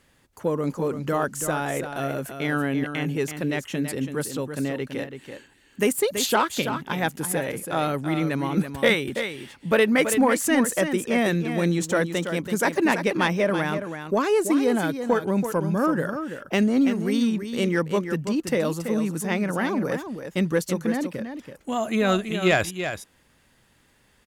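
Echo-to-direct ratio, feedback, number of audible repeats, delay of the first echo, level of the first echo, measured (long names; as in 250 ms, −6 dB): −8.5 dB, repeats not evenly spaced, 1, 331 ms, −8.5 dB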